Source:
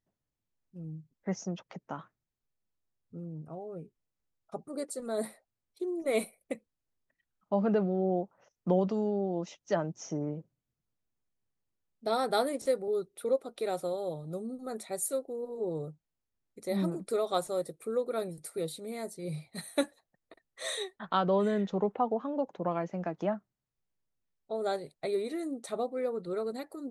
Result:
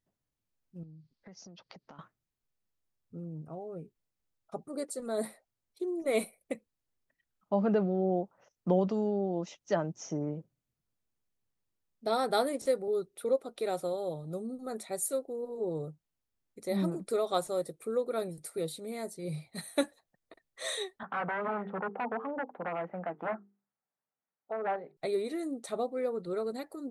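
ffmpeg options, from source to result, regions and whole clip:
-filter_complex "[0:a]asettb=1/sr,asplit=3[s0][s1][s2];[s0]atrim=end=0.834[s3];[s1]atrim=start=0.83:end=1.99,asetpts=PTS-STARTPTS,afade=t=in:d=0.004:c=qsin,afade=t=out:st=1.156:d=0.004:c=qsin,acompressor=threshold=0.00355:ratio=8:attack=3.2:release=140:knee=1:detection=peak,lowpass=f=4600:t=q:w=4.8[s4];[s2]atrim=start=1.986[s5];[s3][s4]acrossfade=d=0.004:c1=hsin:c2=qsin[s6];[s6][s5]acrossfade=d=0.004:c1=qsin:c2=hsin,asettb=1/sr,asplit=3[s7][s8][s9];[s7]atrim=end=21.034[s10];[s8]atrim=start=21.03:end=24.97,asetpts=PTS-STARTPTS,afade=t=in:d=0.004:c=qsin,afade=t=out:st=3.936:d=0.004:c=qsin,bandreject=f=50:t=h:w=6,bandreject=f=100:t=h:w=6,bandreject=f=150:t=h:w=6,bandreject=f=200:t=h:w=6,bandreject=f=250:t=h:w=6,bandreject=f=300:t=h:w=6,bandreject=f=350:t=h:w=6,bandreject=f=400:t=h:w=6,bandreject=f=450:t=h:w=6,aeval=exprs='0.0376*(abs(mod(val(0)/0.0376+3,4)-2)-1)':c=same,highpass=230,equalizer=f=350:t=q:w=4:g=-6,equalizer=f=790:t=q:w=4:g=6,equalizer=f=1300:t=q:w=4:g=4,lowpass=f=2100:w=0.5412,lowpass=f=2100:w=1.3066[s11];[s9]atrim=start=24.966[s12];[s10][s11]acrossfade=d=0.004:c1=hsin:c2=qsin[s13];[s13][s12]acrossfade=d=0.004:c1=qsin:c2=hsin"

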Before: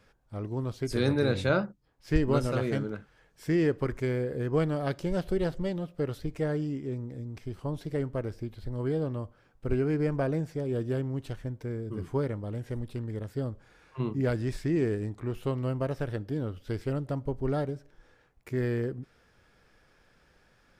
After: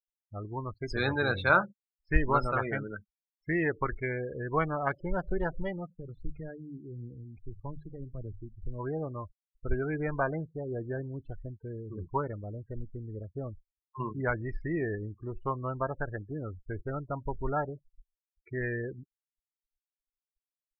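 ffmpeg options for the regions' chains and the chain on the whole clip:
-filter_complex "[0:a]asettb=1/sr,asplit=3[s0][s1][s2];[s0]atrim=end=5.904[s3];[s1]atrim=start=5.9:end=8.56,asetpts=PTS-STARTPTS,afade=t=in:d=0.004:c=qsin,afade=t=out:st=2.656:d=0.004:c=qsin,acrossover=split=200|3000[s4][s5][s6];[s5]acompressor=threshold=0.00891:ratio=4:attack=3.2:release=140:knee=2.83:detection=peak[s7];[s4][s7][s6]amix=inputs=3:normalize=0,bandreject=f=50:t=h:w=6,bandreject=f=100:t=h:w=6,bandreject=f=150:t=h:w=6,aphaser=in_gain=1:out_gain=1:delay=4.1:decay=0.26:speed=1.7:type=sinusoidal[s8];[s2]atrim=start=8.556[s9];[s3][s8]acrossfade=d=0.004:c1=hsin:c2=qsin[s10];[s10][s9]acrossfade=d=0.004:c1=qsin:c2=hsin,afftfilt=real='re*gte(hypot(re,im),0.01)':imag='im*gte(hypot(re,im),0.01)':win_size=1024:overlap=0.75,afftdn=nr=21:nf=-37,equalizer=f=125:t=o:w=1:g=-8,equalizer=f=250:t=o:w=1:g=-9,equalizer=f=500:t=o:w=1:g=-8,equalizer=f=1000:t=o:w=1:g=8,equalizer=f=2000:t=o:w=1:g=4,equalizer=f=4000:t=o:w=1:g=-3,volume=1.58"

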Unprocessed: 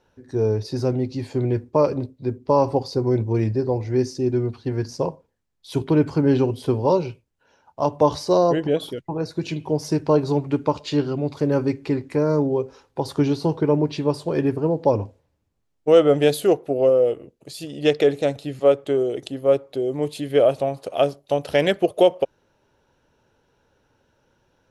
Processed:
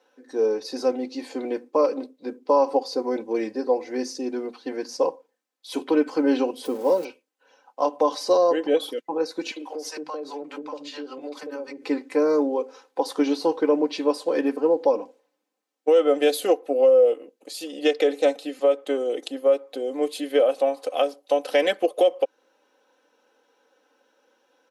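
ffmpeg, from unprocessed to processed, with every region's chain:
-filter_complex "[0:a]asettb=1/sr,asplit=3[s0][s1][s2];[s0]atrim=end=6.654[s3];[s1]atrim=start=6.65:end=7.05,asetpts=PTS-STARTPTS,afade=t=in:d=0.004:c=qsin,afade=t=out:st=0.396:d=0.004:c=qsin,aeval=exprs='val(0)+0.5*0.0282*sgn(val(0))':c=same,equalizer=f=2500:w=0.34:g=-11[s4];[s2]atrim=start=7.046[s5];[s3][s4]acrossfade=d=0.004:c1=hsin:c2=qsin[s6];[s6][s5]acrossfade=d=0.004:c1=qsin:c2=hsin,asettb=1/sr,asplit=3[s7][s8][s9];[s7]atrim=end=9.514[s10];[s8]atrim=start=9.51:end=11.84,asetpts=PTS-STARTPTS,afade=t=in:d=0.004:c=qsin,afade=t=out:st=2.326:d=0.004:c=qsin,acrossover=split=250|760[s11][s12][s13];[s12]adelay=50[s14];[s11]adelay=500[s15];[s15][s14][s13]amix=inputs=3:normalize=0,atrim=end_sample=102753,acompressor=threshold=0.0355:ratio=12:attack=3.2:release=140:knee=1:detection=peak[s16];[s9]atrim=start=11.836[s17];[s10][s16]acrossfade=d=0.004:c1=hsin:c2=qsin[s18];[s18][s17]acrossfade=d=0.004:c1=qsin:c2=hsin,highpass=f=320:w=0.5412,highpass=f=320:w=1.3066,aecho=1:1:3.9:0.73,alimiter=limit=0.316:level=0:latency=1:release=226"

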